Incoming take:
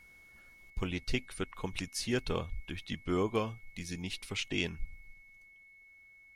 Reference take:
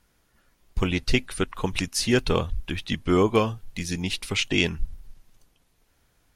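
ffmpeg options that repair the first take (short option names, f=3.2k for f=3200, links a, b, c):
-af "bandreject=f=2.2k:w=30,asetnsamples=n=441:p=0,asendcmd='0.7 volume volume 11dB',volume=0dB"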